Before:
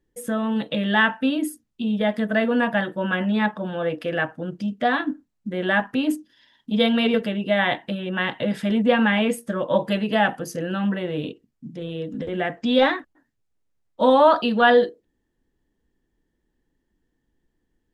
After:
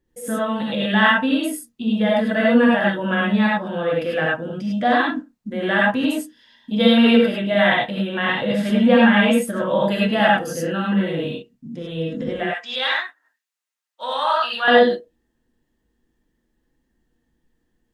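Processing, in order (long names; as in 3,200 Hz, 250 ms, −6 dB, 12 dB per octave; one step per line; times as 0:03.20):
0:12.43–0:14.68: high-pass filter 1,300 Hz 12 dB per octave
reverb whose tail is shaped and stops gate 120 ms rising, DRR −4 dB
level −1 dB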